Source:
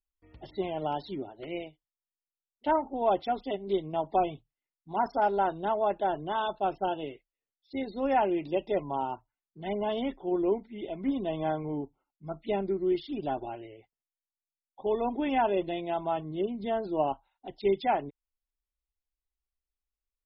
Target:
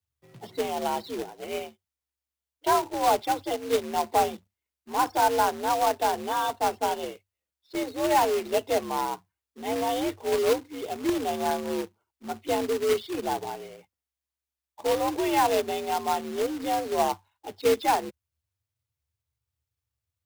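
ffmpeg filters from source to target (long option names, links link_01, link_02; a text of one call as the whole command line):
ffmpeg -i in.wav -af "afreqshift=67,acrusher=bits=2:mode=log:mix=0:aa=0.000001,volume=3dB" out.wav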